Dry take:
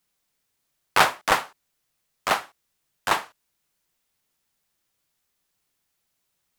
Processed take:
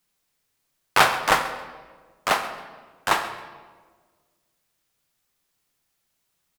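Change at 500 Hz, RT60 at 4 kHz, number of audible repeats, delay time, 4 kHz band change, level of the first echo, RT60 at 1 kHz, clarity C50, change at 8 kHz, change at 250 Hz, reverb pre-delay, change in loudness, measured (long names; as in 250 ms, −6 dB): +2.0 dB, 1.0 s, 1, 135 ms, +1.5 dB, −16.5 dB, 1.3 s, 9.0 dB, +1.5 dB, +2.0 dB, 6 ms, +1.0 dB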